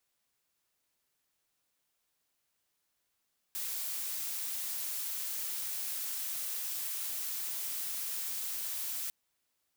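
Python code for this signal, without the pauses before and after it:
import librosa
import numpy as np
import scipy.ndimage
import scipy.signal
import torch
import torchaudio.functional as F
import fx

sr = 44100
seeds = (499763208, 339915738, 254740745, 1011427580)

y = fx.noise_colour(sr, seeds[0], length_s=5.55, colour='blue', level_db=-37.0)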